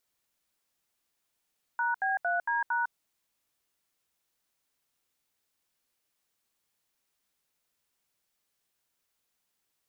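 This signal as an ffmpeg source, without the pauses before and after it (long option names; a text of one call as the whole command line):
ffmpeg -f lavfi -i "aevalsrc='0.0376*clip(min(mod(t,0.228),0.154-mod(t,0.228))/0.002,0,1)*(eq(floor(t/0.228),0)*(sin(2*PI*941*mod(t,0.228))+sin(2*PI*1477*mod(t,0.228)))+eq(floor(t/0.228),1)*(sin(2*PI*770*mod(t,0.228))+sin(2*PI*1633*mod(t,0.228)))+eq(floor(t/0.228),2)*(sin(2*PI*697*mod(t,0.228))+sin(2*PI*1477*mod(t,0.228)))+eq(floor(t/0.228),3)*(sin(2*PI*941*mod(t,0.228))+sin(2*PI*1633*mod(t,0.228)))+eq(floor(t/0.228),4)*(sin(2*PI*941*mod(t,0.228))+sin(2*PI*1477*mod(t,0.228))))':duration=1.14:sample_rate=44100" out.wav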